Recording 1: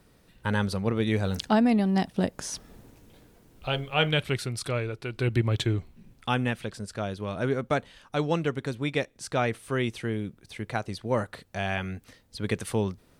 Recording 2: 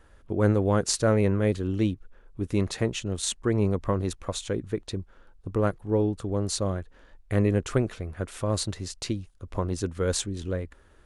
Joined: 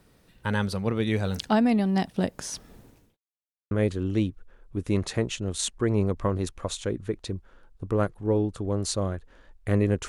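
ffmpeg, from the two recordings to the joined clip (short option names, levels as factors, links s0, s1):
-filter_complex "[0:a]apad=whole_dur=10.08,atrim=end=10.08,asplit=2[s0][s1];[s0]atrim=end=3.17,asetpts=PTS-STARTPTS,afade=t=out:st=2.72:d=0.45:c=qsin[s2];[s1]atrim=start=3.17:end=3.71,asetpts=PTS-STARTPTS,volume=0[s3];[1:a]atrim=start=1.35:end=7.72,asetpts=PTS-STARTPTS,afade=t=in:d=0.004:c=hsin[s4];[s2][s3][s4]concat=n=3:v=0:a=1"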